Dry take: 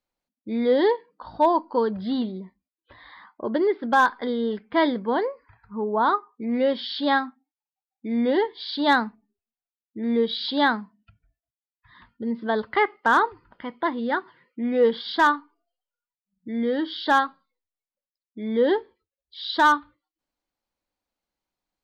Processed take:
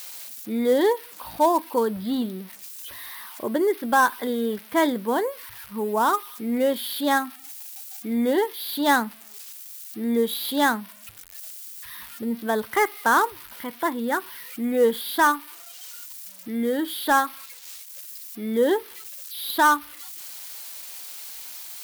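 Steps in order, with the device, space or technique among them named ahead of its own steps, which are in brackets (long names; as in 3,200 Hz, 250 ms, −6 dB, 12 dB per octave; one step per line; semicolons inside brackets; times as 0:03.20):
budget class-D amplifier (gap after every zero crossing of 0.066 ms; spike at every zero crossing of −25.5 dBFS)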